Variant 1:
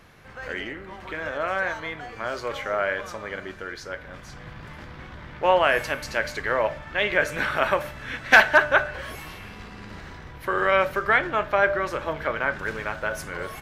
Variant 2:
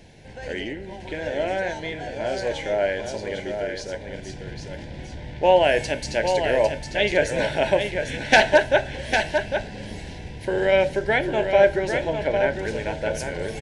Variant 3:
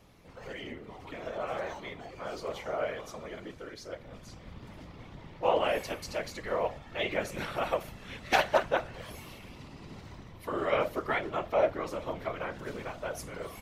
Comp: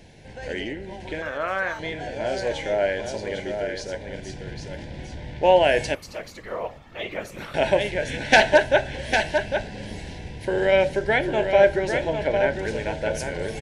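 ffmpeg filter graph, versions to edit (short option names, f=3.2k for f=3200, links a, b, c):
-filter_complex "[1:a]asplit=3[a][b][c];[a]atrim=end=1.222[d];[0:a]atrim=start=1.218:end=1.792[e];[b]atrim=start=1.788:end=5.952[f];[2:a]atrim=start=5.948:end=7.542[g];[c]atrim=start=7.538[h];[d][e]acrossfade=d=0.004:c1=hsin:c2=hsin[i];[i][f]acrossfade=d=0.004:c1=hsin:c2=hsin[j];[j][g]acrossfade=d=0.004:c1=hsin:c2=hsin[k];[k][h]acrossfade=d=0.004:c1=hsin:c2=hsin"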